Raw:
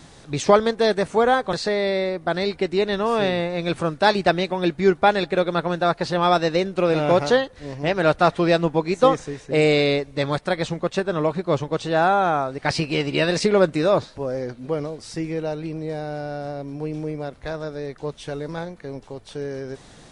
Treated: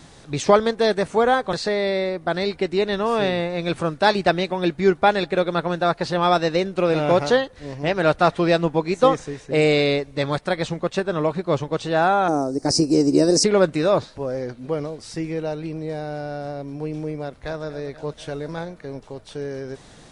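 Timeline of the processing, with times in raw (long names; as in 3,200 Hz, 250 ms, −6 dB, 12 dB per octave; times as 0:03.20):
0:12.28–0:13.44: drawn EQ curve 190 Hz 0 dB, 280 Hz +11 dB, 3,300 Hz −22 dB, 5,200 Hz +11 dB
0:17.25–0:17.65: delay throw 240 ms, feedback 75%, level −14.5 dB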